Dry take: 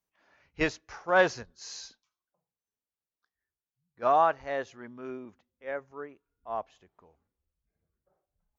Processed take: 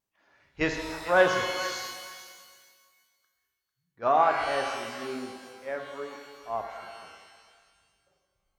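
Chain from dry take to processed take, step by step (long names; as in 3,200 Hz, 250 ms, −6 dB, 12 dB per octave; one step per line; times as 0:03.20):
tape wow and flutter 23 cents
feedback echo with a high-pass in the loop 446 ms, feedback 16%, high-pass 960 Hz, level −12 dB
reverb with rising layers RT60 1.7 s, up +12 semitones, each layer −8 dB, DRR 3.5 dB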